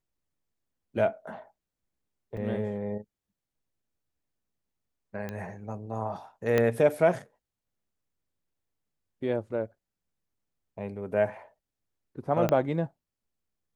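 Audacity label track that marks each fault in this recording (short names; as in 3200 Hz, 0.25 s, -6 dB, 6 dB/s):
2.370000	2.370000	gap 4.2 ms
5.290000	5.290000	pop -22 dBFS
6.580000	6.580000	pop -12 dBFS
12.490000	12.490000	pop -13 dBFS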